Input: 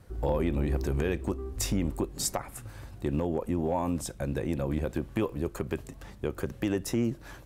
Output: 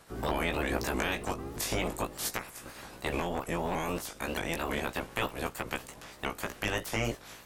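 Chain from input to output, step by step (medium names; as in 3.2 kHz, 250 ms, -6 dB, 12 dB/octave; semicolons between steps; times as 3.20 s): spectral peaks clipped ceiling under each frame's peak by 25 dB; chorus 0.36 Hz, delay 16 ms, depth 2.3 ms; vibrato with a chosen wave saw up 3.2 Hz, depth 160 cents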